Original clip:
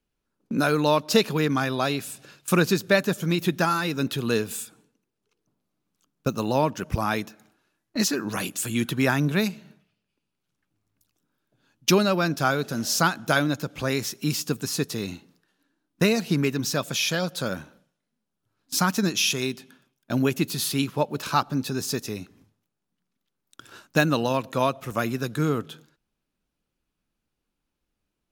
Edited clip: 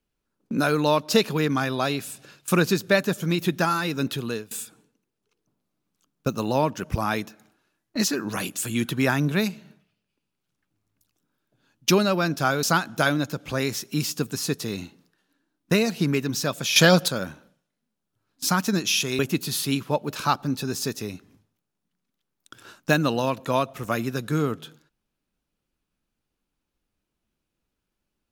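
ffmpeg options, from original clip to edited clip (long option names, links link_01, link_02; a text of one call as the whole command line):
ffmpeg -i in.wav -filter_complex "[0:a]asplit=6[link_01][link_02][link_03][link_04][link_05][link_06];[link_01]atrim=end=4.51,asetpts=PTS-STARTPTS,afade=type=out:start_time=4.12:duration=0.39:silence=0.0841395[link_07];[link_02]atrim=start=4.51:end=12.632,asetpts=PTS-STARTPTS,afade=type=in:duration=0.004:curve=hsin:silence=0.0841395[link_08];[link_03]atrim=start=12.928:end=17.062[link_09];[link_04]atrim=start=17.058:end=17.382,asetpts=PTS-STARTPTS,volume=10.5dB[link_10];[link_05]atrim=start=17.378:end=19.492[link_11];[link_06]atrim=start=20.258[link_12];[link_07][link_08]concat=n=2:v=0:a=1[link_13];[link_13][link_09]acrossfade=duration=0.004:curve1=hsin:curve2=hsin[link_14];[link_14][link_10]acrossfade=duration=0.004:curve1=hsin:curve2=hsin[link_15];[link_15][link_11]acrossfade=duration=0.004:curve1=hsin:curve2=hsin[link_16];[link_16][link_12]acrossfade=duration=0.004:curve1=hsin:curve2=hsin" out.wav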